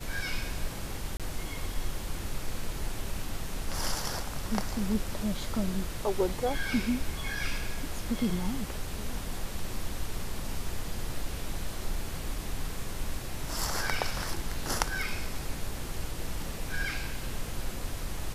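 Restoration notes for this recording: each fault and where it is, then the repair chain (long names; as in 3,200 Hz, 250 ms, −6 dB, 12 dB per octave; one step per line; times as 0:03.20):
0:01.17–0:01.20: drop-out 27 ms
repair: repair the gap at 0:01.17, 27 ms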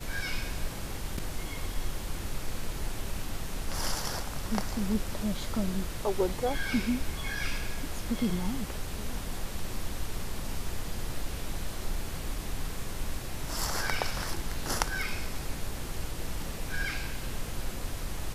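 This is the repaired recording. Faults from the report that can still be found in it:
none of them is left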